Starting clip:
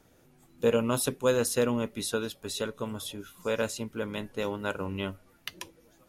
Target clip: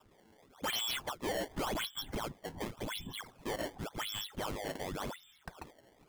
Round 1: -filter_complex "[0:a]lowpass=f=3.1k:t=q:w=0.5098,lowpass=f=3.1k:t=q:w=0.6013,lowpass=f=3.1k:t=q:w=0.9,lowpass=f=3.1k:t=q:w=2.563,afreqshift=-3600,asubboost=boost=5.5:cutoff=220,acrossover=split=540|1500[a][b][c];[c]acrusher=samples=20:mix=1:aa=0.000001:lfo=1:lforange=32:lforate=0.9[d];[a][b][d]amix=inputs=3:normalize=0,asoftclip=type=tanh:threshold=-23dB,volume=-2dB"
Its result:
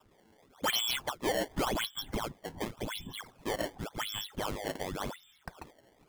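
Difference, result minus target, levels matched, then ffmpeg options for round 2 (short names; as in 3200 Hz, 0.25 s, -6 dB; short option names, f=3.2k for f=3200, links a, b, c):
soft clip: distortion -6 dB
-filter_complex "[0:a]lowpass=f=3.1k:t=q:w=0.5098,lowpass=f=3.1k:t=q:w=0.6013,lowpass=f=3.1k:t=q:w=0.9,lowpass=f=3.1k:t=q:w=2.563,afreqshift=-3600,asubboost=boost=5.5:cutoff=220,acrossover=split=540|1500[a][b][c];[c]acrusher=samples=20:mix=1:aa=0.000001:lfo=1:lforange=32:lforate=0.9[d];[a][b][d]amix=inputs=3:normalize=0,asoftclip=type=tanh:threshold=-30.5dB,volume=-2dB"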